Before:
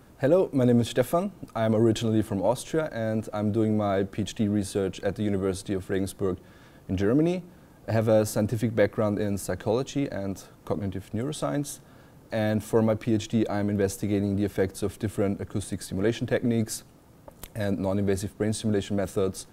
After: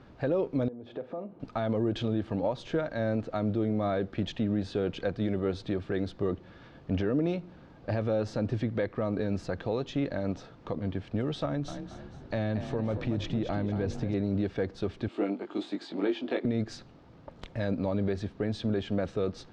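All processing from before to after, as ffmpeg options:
ffmpeg -i in.wav -filter_complex "[0:a]asettb=1/sr,asplit=3[link_01][link_02][link_03];[link_01]atrim=end=0.684[link_04];[link_02]atrim=start=0.68:end=1.4,asetpts=PTS-STARTPTS,afade=type=in:duration=0.004:curve=qsin,afade=type=out:start_time=0.716:duration=0.004:curve=qsin,acompressor=threshold=-32dB:ratio=6:attack=3.2:release=140:knee=1:detection=peak,bandpass=frequency=450:width_type=q:width=0.88,asplit=2[link_05][link_06];[link_06]adelay=45,volume=-13.5dB[link_07];[link_05][link_07]amix=inputs=2:normalize=0,atrim=end_sample=31752[link_08];[link_03]atrim=start=1.396[link_09];[link_04][link_08]acrossfade=duration=0.004:curve1=hsin:curve2=qsin[link_10];[link_10][link_09]acrossfade=duration=0.004:curve1=qsin:curve2=hsin,asettb=1/sr,asplit=3[link_11][link_12][link_13];[link_11]atrim=end=11.454[link_14];[link_12]atrim=start=11.45:end=14.14,asetpts=PTS-STARTPTS,afade=type=in:duration=0.004:curve=qsin,afade=type=out:start_time=2.686:duration=0.004:curve=qsin,lowshelf=frequency=120:gain=10.5,acompressor=threshold=-26dB:ratio=5:attack=3.2:release=140:knee=1:detection=peak,asplit=5[link_15][link_16][link_17][link_18][link_19];[link_16]adelay=230,afreqshift=34,volume=-10dB[link_20];[link_17]adelay=460,afreqshift=68,volume=-18.2dB[link_21];[link_18]adelay=690,afreqshift=102,volume=-26.4dB[link_22];[link_19]adelay=920,afreqshift=136,volume=-34.5dB[link_23];[link_15][link_20][link_21][link_22][link_23]amix=inputs=5:normalize=0,atrim=end_sample=118629[link_24];[link_13]atrim=start=14.136[link_25];[link_14][link_24]acrossfade=duration=0.004:curve1=hsin:curve2=qsin[link_26];[link_26][link_25]acrossfade=duration=0.004:curve1=qsin:curve2=hsin,asettb=1/sr,asplit=3[link_27][link_28][link_29];[link_27]atrim=end=15.084[link_30];[link_28]atrim=start=15.08:end=16.45,asetpts=PTS-STARTPTS,afade=type=in:duration=0.004:curve=qsin,afade=type=out:start_time=1.366:duration=0.004:curve=qsin,highpass=frequency=270:width=0.5412,highpass=frequency=270:width=1.3066,equalizer=frequency=330:width_type=q:width=4:gain=5,equalizer=frequency=490:width_type=q:width=4:gain=-8,equalizer=frequency=860:width_type=q:width=4:gain=3,equalizer=frequency=1700:width_type=q:width=4:gain=-6,equalizer=frequency=5800:width_type=q:width=4:gain=-7,lowpass=frequency=8400:width=0.5412,lowpass=frequency=8400:width=1.3066,asplit=2[link_31][link_32];[link_32]adelay=20,volume=-4dB[link_33];[link_31][link_33]amix=inputs=2:normalize=0,atrim=end_sample=60417[link_34];[link_29]atrim=start=16.446[link_35];[link_30][link_34]acrossfade=duration=0.004:curve1=hsin:curve2=qsin[link_36];[link_36][link_35]acrossfade=duration=0.004:curve1=qsin:curve2=hsin,lowpass=frequency=4600:width=0.5412,lowpass=frequency=4600:width=1.3066,alimiter=limit=-19dB:level=0:latency=1:release=234" out.wav

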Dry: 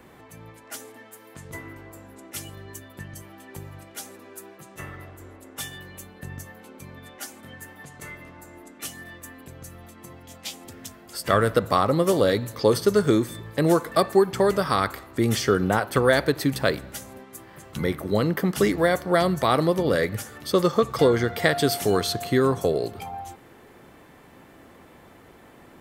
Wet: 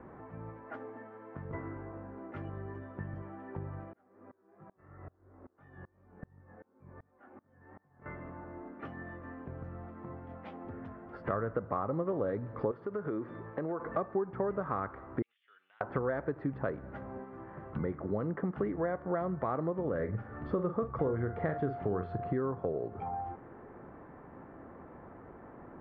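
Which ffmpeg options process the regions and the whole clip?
ffmpeg -i in.wav -filter_complex "[0:a]asettb=1/sr,asplit=3[link_01][link_02][link_03];[link_01]atrim=end=3.934[link_04];[link_02]atrim=start=3.93:end=8.06,asetpts=PTS-STARTPTS,afade=type=in:duration=0.004:curve=qsin,afade=type=out:start_time=4.126:duration=0.004:curve=qsin,lowpass=2600,flanger=delay=19:depth=5.8:speed=2.8,aeval=exprs='val(0)*pow(10,-29*if(lt(mod(-2.6*n/s,1),2*abs(-2.6)/1000),1-mod(-2.6*n/s,1)/(2*abs(-2.6)/1000),(mod(-2.6*n/s,1)-2*abs(-2.6)/1000)/(1-2*abs(-2.6)/1000))/20)':channel_layout=same[link_05];[link_03]atrim=start=8.056[link_06];[link_04][link_05]acrossfade=duration=0.004:curve1=hsin:curve2=qsin[link_07];[link_07][link_06]acrossfade=duration=0.004:curve1=qsin:curve2=hsin,asettb=1/sr,asplit=3[link_08][link_09][link_10];[link_08]atrim=end=12.714[link_11];[link_09]atrim=start=12.71:end=13.8,asetpts=PTS-STARTPTS,afade=type=in:duration=0.004:curve=qsin,afade=type=out:start_time=1.086:duration=0.004:curve=qsin,highpass=frequency=310:poles=1,acompressor=threshold=-28dB:ratio=2.5:attack=3.2:release=140:knee=1:detection=peak[link_12];[link_10]atrim=start=13.796[link_13];[link_11][link_12]acrossfade=duration=0.004:curve1=hsin:curve2=qsin[link_14];[link_14][link_13]acrossfade=duration=0.004:curve1=qsin:curve2=hsin,asettb=1/sr,asplit=3[link_15][link_16][link_17];[link_15]atrim=end=15.224[link_18];[link_16]atrim=start=15.22:end=15.81,asetpts=PTS-STARTPTS,afade=type=in:duration=0.004:curve=qsin,afade=type=out:start_time=0.586:duration=0.004:curve=qsin,asuperpass=centerf=3200:order=4:qfactor=2.9,acompressor=threshold=-45dB:ratio=20:attack=3.2:release=140:knee=1:detection=peak[link_19];[link_17]atrim=start=15.806[link_20];[link_18][link_19]acrossfade=duration=0.004:curve1=hsin:curve2=qsin[link_21];[link_21][link_20]acrossfade=duration=0.004:curve1=qsin:curve2=hsin,asettb=1/sr,asplit=3[link_22][link_23][link_24];[link_22]atrim=end=19.954[link_25];[link_23]atrim=start=19.95:end=22.33,asetpts=PTS-STARTPTS,afade=type=in:duration=0.004:curve=qsin,afade=type=out:start_time=2.376:duration=0.004:curve=qsin,lowshelf=frequency=130:gain=9,asplit=2[link_26][link_27];[link_27]adelay=44,volume=-9.5dB[link_28];[link_26][link_28]amix=inputs=2:normalize=0,atrim=end_sample=104958[link_29];[link_24]atrim=start=22.326[link_30];[link_25][link_29]acrossfade=duration=0.004:curve1=hsin:curve2=qsin[link_31];[link_31][link_30]acrossfade=duration=0.004:curve1=qsin:curve2=hsin,lowpass=frequency=1500:width=0.5412,lowpass=frequency=1500:width=1.3066,acompressor=threshold=-34dB:ratio=3" out.wav

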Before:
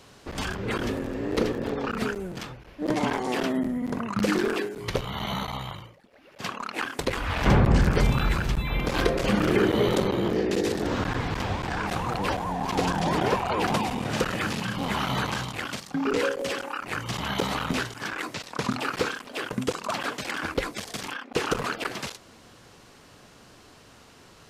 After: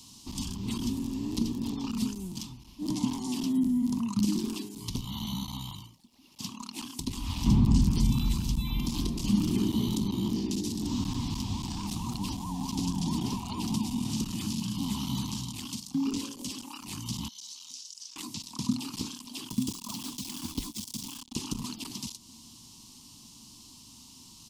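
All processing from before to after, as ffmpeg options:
ffmpeg -i in.wav -filter_complex "[0:a]asettb=1/sr,asplit=3[link_01][link_02][link_03];[link_01]atrim=end=17.284[link_04];[link_02]atrim=start=17.28:end=18.16,asetpts=PTS-STARTPTS,afade=type=in:duration=0.004:curve=qsin,afade=type=out:start_time=0.876:duration=0.004:curve=qsin,bandpass=frequency=5800:width_type=q:width=2.6,acompressor=threshold=-44dB:ratio=6:attack=3.2:release=140:knee=1:detection=peak[link_05];[link_03]atrim=start=18.156[link_06];[link_04][link_05]acrossfade=duration=0.004:curve1=hsin:curve2=qsin[link_07];[link_07][link_06]acrossfade=duration=0.004:curve1=qsin:curve2=hsin,asettb=1/sr,asplit=3[link_08][link_09][link_10];[link_08]atrim=end=19.504[link_11];[link_09]atrim=start=19.5:end=21.33,asetpts=PTS-STARTPTS,afade=type=in:duration=0.004:curve=qsin,afade=type=out:start_time=1.826:duration=0.004:curve=qsin,aeval=exprs='val(0)+0.00282*sin(2*PI*3400*n/s)':channel_layout=same,acrusher=bits=5:mix=0:aa=0.5[link_12];[link_10]atrim=start=21.326[link_13];[link_11][link_12]acrossfade=duration=0.004:curve1=hsin:curve2=qsin[link_14];[link_14][link_13]acrossfade=duration=0.004:curve1=qsin:curve2=hsin,firequalizer=gain_entry='entry(160,0);entry(240,7);entry(510,-26);entry(960,0);entry(1500,-24);entry(2900,2);entry(5200,11)':delay=0.05:min_phase=1,acrossover=split=370[link_15][link_16];[link_16]acompressor=threshold=-36dB:ratio=3[link_17];[link_15][link_17]amix=inputs=2:normalize=0,volume=-3dB" out.wav

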